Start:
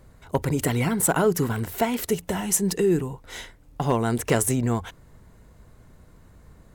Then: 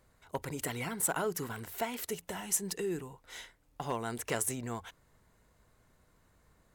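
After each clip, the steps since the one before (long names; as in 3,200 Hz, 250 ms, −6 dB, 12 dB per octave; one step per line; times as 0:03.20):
low-shelf EQ 460 Hz −10 dB
level −8 dB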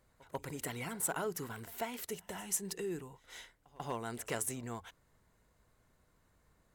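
echo ahead of the sound 141 ms −22 dB
level −4 dB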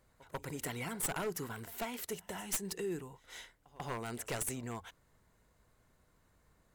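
wavefolder on the positive side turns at −32.5 dBFS
level +1 dB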